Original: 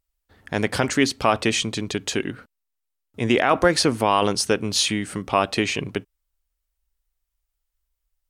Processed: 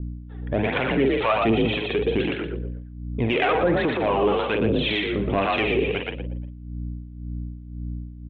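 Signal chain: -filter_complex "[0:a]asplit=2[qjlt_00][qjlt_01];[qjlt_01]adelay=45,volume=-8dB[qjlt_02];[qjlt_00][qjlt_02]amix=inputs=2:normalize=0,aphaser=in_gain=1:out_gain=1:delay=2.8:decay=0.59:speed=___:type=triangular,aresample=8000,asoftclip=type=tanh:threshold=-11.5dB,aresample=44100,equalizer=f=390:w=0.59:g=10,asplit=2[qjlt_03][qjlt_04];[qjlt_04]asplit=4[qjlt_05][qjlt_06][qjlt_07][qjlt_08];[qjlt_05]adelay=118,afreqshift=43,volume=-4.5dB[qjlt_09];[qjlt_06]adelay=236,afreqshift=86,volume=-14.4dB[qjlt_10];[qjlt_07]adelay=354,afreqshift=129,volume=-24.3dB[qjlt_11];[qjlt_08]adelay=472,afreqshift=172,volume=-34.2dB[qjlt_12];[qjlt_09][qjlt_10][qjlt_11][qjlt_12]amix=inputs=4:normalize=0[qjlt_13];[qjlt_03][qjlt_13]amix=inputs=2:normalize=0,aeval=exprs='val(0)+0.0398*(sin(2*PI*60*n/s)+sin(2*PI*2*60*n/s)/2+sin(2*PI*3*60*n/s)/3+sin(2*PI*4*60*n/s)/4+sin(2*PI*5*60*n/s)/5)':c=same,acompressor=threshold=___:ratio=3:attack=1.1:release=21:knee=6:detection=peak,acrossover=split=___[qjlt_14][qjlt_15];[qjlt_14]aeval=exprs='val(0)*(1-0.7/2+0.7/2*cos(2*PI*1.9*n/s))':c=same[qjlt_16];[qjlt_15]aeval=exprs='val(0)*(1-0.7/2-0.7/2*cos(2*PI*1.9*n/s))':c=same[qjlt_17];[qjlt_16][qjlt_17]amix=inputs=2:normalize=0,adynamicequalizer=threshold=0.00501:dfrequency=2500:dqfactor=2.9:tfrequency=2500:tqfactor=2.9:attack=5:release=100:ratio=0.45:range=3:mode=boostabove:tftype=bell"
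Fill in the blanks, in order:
1.3, -16dB, 650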